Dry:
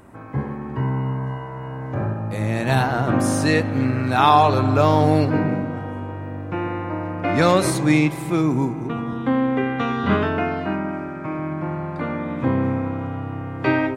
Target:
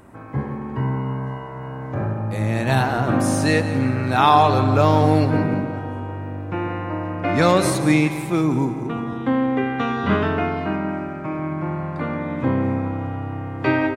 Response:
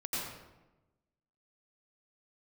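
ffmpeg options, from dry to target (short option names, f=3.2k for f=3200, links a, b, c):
-af "aecho=1:1:173|346|519|692:0.224|0.0895|0.0358|0.0143"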